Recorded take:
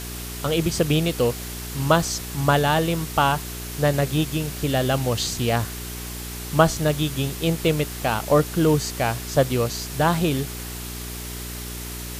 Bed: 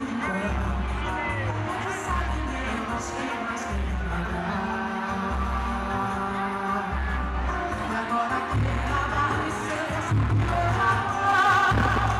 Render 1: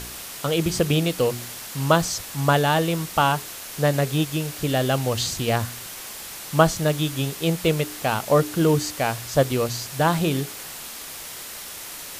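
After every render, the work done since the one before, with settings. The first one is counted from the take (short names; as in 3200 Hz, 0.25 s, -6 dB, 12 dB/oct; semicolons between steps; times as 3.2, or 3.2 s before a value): de-hum 60 Hz, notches 7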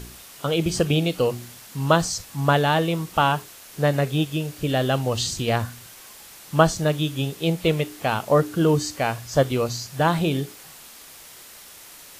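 noise print and reduce 8 dB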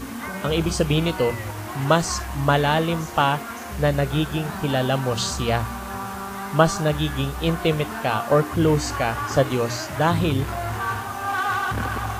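add bed -4 dB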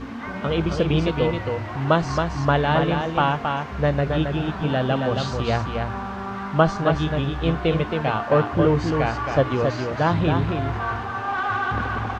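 air absorption 210 m; echo 0.271 s -5 dB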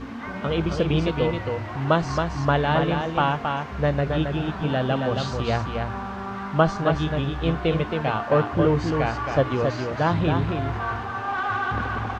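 gain -1.5 dB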